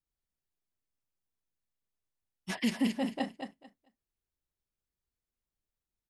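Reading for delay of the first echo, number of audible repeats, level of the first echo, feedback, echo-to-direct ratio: 221 ms, 2, -7.0 dB, 19%, -7.0 dB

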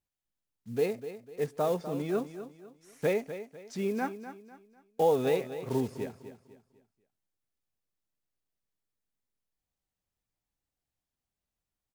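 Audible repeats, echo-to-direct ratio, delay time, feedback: 3, -11.5 dB, 249 ms, 35%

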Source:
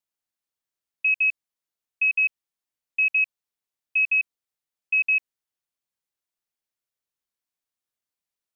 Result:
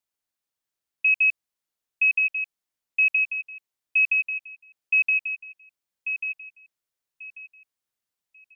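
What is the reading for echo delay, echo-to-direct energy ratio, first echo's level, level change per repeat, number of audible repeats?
1140 ms, -8.0 dB, -8.5 dB, -12.5 dB, 3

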